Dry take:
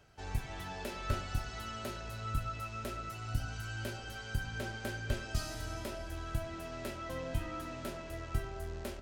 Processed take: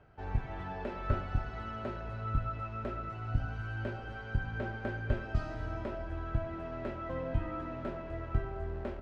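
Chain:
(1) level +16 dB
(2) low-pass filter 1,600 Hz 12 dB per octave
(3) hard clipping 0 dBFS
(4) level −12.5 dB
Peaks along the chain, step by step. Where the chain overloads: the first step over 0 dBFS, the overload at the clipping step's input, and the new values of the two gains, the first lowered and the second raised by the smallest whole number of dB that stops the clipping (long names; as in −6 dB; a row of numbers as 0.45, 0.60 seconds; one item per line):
−5.5, −5.5, −5.5, −18.0 dBFS
no step passes full scale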